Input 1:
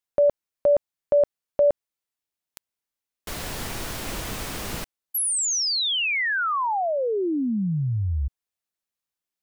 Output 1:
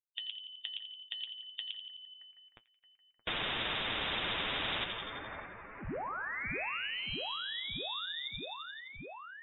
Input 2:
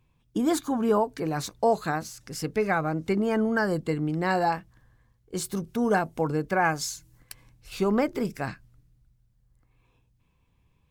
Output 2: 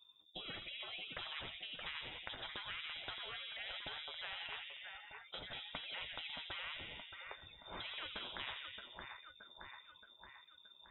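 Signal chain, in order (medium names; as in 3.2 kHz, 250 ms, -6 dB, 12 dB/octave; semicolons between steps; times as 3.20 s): expander on every frequency bin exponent 1.5; gain riding within 4 dB 0.5 s; resonant low shelf 200 Hz -6 dB, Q 1.5; compression, threshold -30 dBFS; peak limiter -32.5 dBFS; flange 0.74 Hz, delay 8.4 ms, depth 1.2 ms, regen +52%; two-band feedback delay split 1.6 kHz, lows 86 ms, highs 623 ms, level -13 dB; frequency inversion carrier 3.6 kHz; spectrum-flattening compressor 4:1; trim +6.5 dB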